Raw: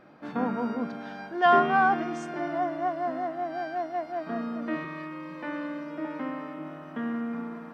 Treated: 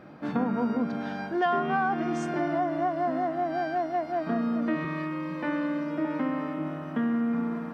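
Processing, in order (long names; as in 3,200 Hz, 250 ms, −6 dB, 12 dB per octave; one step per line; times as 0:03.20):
high-pass filter 63 Hz
low-shelf EQ 210 Hz +9.5 dB
downward compressor 5 to 1, threshold −27 dBFS, peak gain reduction 11.5 dB
level +3.5 dB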